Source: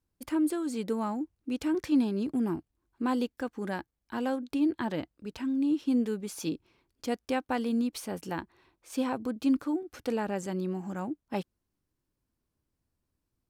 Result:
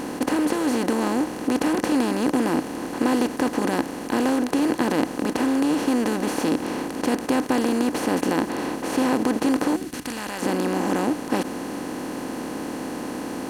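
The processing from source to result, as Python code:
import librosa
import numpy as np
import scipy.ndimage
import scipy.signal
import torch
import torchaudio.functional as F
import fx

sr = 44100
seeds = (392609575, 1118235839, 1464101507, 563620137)

y = fx.bin_compress(x, sr, power=0.2)
y = fx.peak_eq(y, sr, hz=fx.line((9.75, 990.0), (10.41, 240.0)), db=-13.5, octaves=2.7, at=(9.75, 10.41), fade=0.02)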